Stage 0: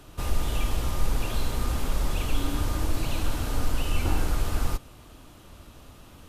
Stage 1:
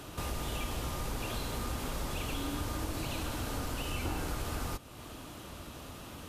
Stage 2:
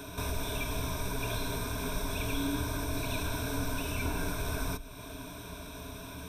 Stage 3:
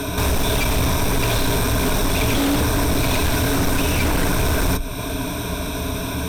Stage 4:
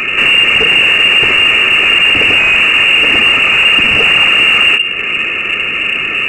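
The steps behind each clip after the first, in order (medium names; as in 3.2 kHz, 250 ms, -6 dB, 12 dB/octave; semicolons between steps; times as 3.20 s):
high-pass 100 Hz 6 dB/octave; compression 2:1, threshold -46 dBFS, peak gain reduction 11.5 dB; trim +5.5 dB
rippled EQ curve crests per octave 1.6, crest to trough 15 dB
sine folder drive 10 dB, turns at -20 dBFS; in parallel at -11 dB: sample-and-hold 26×; on the sum: trim +3.5 dB
frequency inversion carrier 2.8 kHz; in parallel at -9 dB: saturation -19.5 dBFS, distortion -12 dB; on the sum: trim +7.5 dB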